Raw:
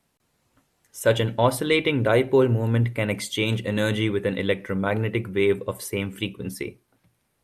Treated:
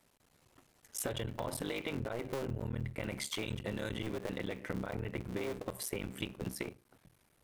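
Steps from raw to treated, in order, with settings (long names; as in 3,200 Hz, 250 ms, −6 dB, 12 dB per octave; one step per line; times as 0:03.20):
sub-harmonics by changed cycles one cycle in 3, muted
brickwall limiter −17 dBFS, peak gain reduction 10.5 dB
downward compressor 6 to 1, threshold −38 dBFS, peak gain reduction 15.5 dB
level +2.5 dB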